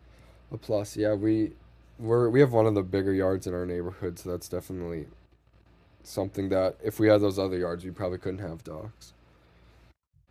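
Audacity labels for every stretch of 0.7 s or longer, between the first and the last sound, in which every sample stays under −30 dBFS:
5.030000	6.170000	silence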